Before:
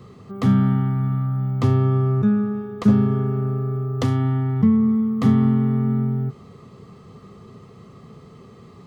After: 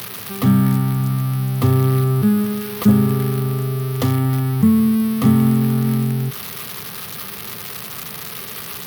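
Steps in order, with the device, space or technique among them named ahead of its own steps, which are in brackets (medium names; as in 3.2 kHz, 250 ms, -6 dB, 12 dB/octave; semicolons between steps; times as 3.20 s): budget class-D amplifier (dead-time distortion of 0.063 ms; zero-crossing glitches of -14 dBFS); trim +2.5 dB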